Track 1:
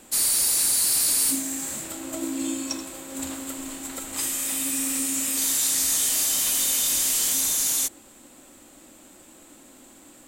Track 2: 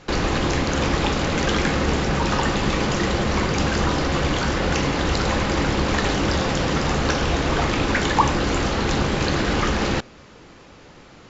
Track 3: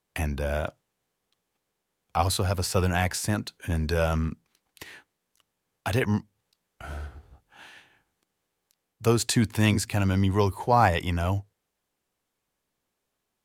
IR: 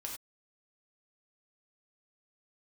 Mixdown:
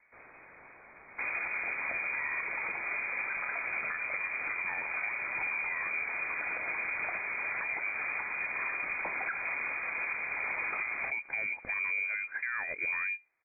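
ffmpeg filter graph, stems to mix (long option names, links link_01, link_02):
-filter_complex "[0:a]volume=-12.5dB[link_01];[1:a]adelay=1100,volume=-11.5dB[link_02];[2:a]acompressor=threshold=-30dB:ratio=6,adelay=1750,volume=2.5dB[link_03];[link_01][link_02][link_03]amix=inputs=3:normalize=0,lowpass=frequency=2100:width_type=q:width=0.5098,lowpass=frequency=2100:width_type=q:width=0.6013,lowpass=frequency=2100:width_type=q:width=0.9,lowpass=frequency=2100:width_type=q:width=2.563,afreqshift=-2500,alimiter=level_in=1dB:limit=-24dB:level=0:latency=1:release=244,volume=-1dB"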